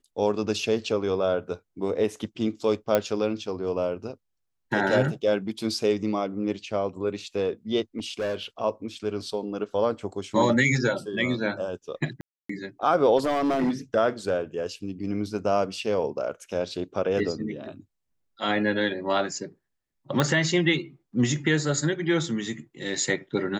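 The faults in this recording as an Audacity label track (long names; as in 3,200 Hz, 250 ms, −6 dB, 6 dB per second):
2.950000	2.950000	click −8 dBFS
7.980000	8.430000	clipping −25 dBFS
12.210000	12.490000	drop-out 284 ms
13.170000	13.710000	clipping −20 dBFS
20.200000	20.200000	click −9 dBFS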